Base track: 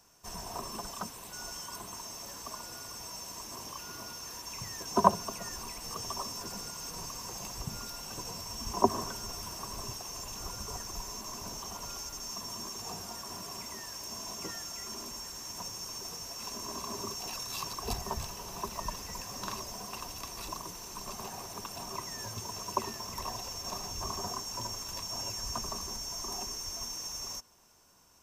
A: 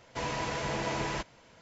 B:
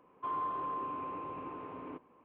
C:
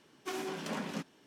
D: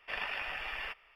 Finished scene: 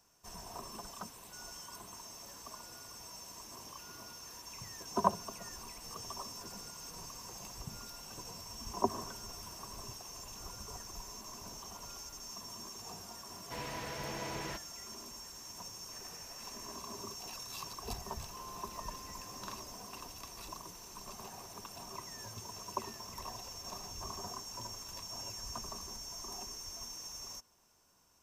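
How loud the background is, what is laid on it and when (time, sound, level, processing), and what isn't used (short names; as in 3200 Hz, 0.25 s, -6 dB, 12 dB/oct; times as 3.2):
base track -6.5 dB
13.35 add A -8.5 dB + steep low-pass 5500 Hz
15.83 add D -15.5 dB + Bessel low-pass 1100 Hz
18.1 add B -14.5 dB
not used: C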